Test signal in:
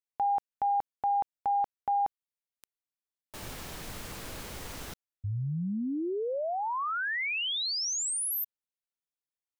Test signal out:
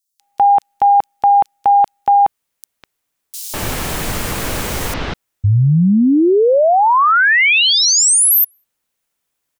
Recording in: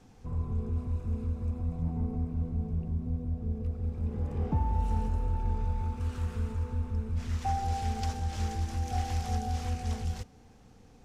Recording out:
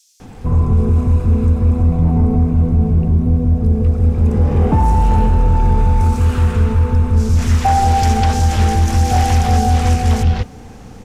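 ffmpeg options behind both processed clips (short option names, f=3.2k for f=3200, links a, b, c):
-filter_complex "[0:a]acrossover=split=4400[a][b];[a]adelay=200[c];[c][b]amix=inputs=2:normalize=0,apsyclip=27.5dB,volume=-7dB"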